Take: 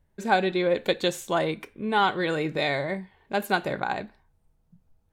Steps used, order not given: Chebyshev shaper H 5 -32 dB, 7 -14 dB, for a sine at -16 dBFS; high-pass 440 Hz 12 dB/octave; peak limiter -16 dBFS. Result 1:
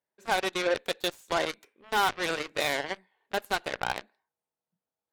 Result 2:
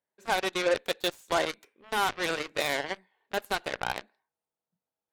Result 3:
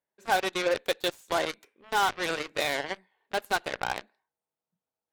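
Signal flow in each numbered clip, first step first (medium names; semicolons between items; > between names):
peak limiter > high-pass > Chebyshev shaper; high-pass > peak limiter > Chebyshev shaper; high-pass > Chebyshev shaper > peak limiter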